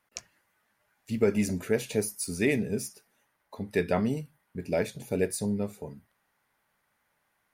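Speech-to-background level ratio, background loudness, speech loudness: 14.5 dB, −44.5 LKFS, −30.0 LKFS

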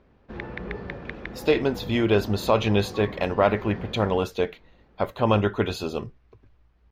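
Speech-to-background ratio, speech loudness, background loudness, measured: 13.5 dB, −24.5 LKFS, −38.0 LKFS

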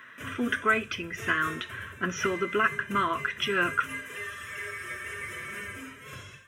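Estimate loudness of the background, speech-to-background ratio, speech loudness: −38.5 LKFS, 10.0 dB, −28.5 LKFS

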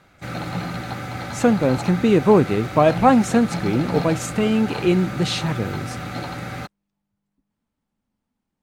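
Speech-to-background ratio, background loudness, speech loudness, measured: 10.5 dB, −30.0 LKFS, −19.5 LKFS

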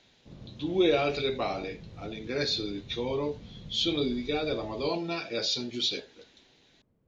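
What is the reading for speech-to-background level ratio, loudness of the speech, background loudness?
18.5 dB, −30.0 LKFS, −48.5 LKFS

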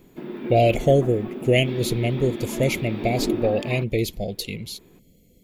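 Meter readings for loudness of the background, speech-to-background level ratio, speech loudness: −31.0 LKFS, 8.0 dB, −23.0 LKFS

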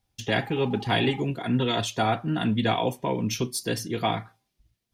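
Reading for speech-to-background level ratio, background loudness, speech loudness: 16.5 dB, −43.0 LKFS, −26.5 LKFS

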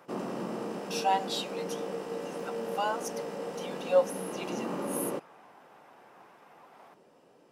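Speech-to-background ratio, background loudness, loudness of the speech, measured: 3.5 dB, −36.5 LKFS, −33.0 LKFS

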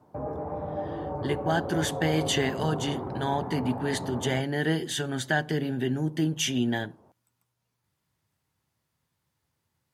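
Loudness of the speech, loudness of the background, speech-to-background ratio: −28.5 LKFS, −34.5 LKFS, 6.0 dB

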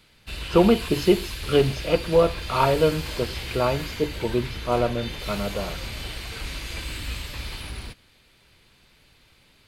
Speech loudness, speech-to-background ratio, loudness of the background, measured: −23.5 LKFS, 9.5 dB, −33.0 LKFS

